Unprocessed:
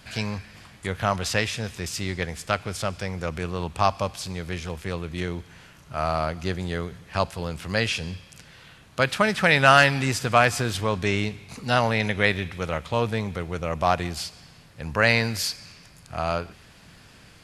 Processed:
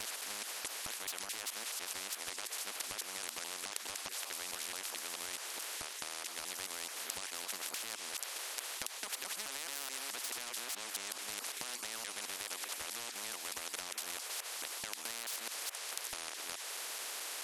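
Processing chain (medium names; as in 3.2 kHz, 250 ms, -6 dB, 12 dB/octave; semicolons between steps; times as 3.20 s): time reversed locally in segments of 215 ms; in parallel at +1 dB: level held to a coarse grid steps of 15 dB; on the sum: saturation -7 dBFS, distortion -13 dB; inverse Chebyshev high-pass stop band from 150 Hz, stop band 70 dB; peak limiter -13.5 dBFS, peak gain reduction 10.5 dB; compression 3:1, threshold -36 dBFS, peak gain reduction 12 dB; spectrum-flattening compressor 10:1; trim +4.5 dB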